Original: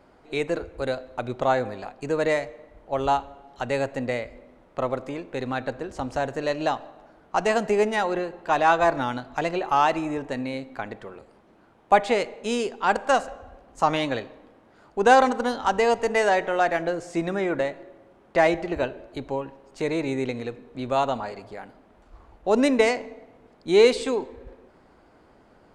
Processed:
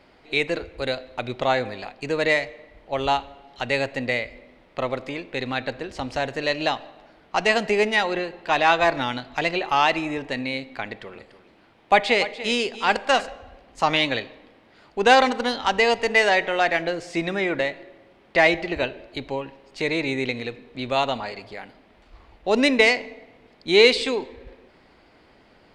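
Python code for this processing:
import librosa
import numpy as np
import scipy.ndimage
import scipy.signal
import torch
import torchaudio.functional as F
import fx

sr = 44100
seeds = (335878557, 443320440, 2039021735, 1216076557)

y = fx.echo_single(x, sr, ms=291, db=-14.5, at=(11.12, 13.25), fade=0.02)
y = fx.band_shelf(y, sr, hz=3100.0, db=9.5, octaves=1.7)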